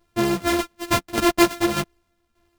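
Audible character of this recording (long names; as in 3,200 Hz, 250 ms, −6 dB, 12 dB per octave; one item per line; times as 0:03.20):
a buzz of ramps at a fixed pitch in blocks of 128 samples
tremolo saw down 1.7 Hz, depth 65%
a shimmering, thickened sound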